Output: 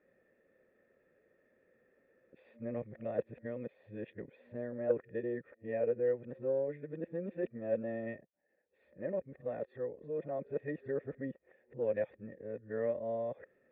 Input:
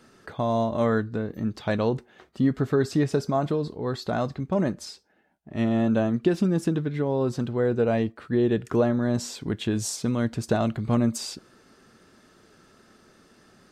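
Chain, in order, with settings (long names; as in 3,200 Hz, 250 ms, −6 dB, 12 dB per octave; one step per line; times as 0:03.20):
played backwards from end to start
formant resonators in series e
harmonic generator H 3 −24 dB, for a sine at −17 dBFS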